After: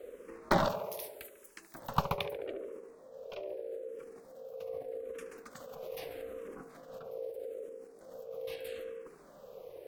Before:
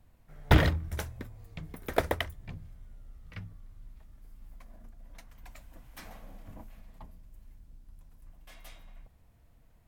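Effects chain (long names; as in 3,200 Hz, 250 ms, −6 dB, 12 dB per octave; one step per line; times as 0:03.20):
0:00.68–0:01.75: first-order pre-emphasis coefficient 0.97
in parallel at +2 dB: compressor whose output falls as the input rises −53 dBFS, ratio −1
on the sum: ring modulation 490 Hz
tape delay 72 ms, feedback 80%, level −10.5 dB, low-pass 2,400 Hz
frequency shifter mixed with the dry sound −0.8 Hz
level +1.5 dB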